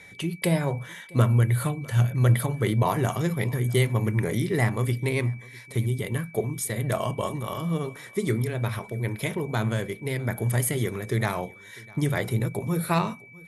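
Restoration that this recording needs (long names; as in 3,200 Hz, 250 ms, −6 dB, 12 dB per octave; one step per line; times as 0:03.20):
clipped peaks rebuilt −9 dBFS
notch filter 2,300 Hz, Q 30
echo removal 651 ms −23.5 dB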